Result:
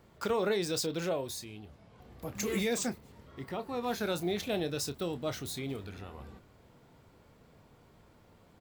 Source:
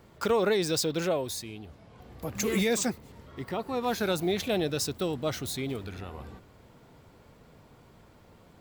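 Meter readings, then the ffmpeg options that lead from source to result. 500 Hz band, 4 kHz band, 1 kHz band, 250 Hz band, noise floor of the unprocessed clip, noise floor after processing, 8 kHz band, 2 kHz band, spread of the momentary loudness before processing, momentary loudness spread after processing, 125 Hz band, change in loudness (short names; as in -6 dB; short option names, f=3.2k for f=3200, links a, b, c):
-5.0 dB, -4.5 dB, -4.5 dB, -4.5 dB, -57 dBFS, -61 dBFS, -4.5 dB, -4.5 dB, 17 LU, 17 LU, -5.0 dB, -4.5 dB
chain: -filter_complex "[0:a]asplit=2[a][b];[b]adelay=29,volume=-11.5dB[c];[a][c]amix=inputs=2:normalize=0,volume=-5dB"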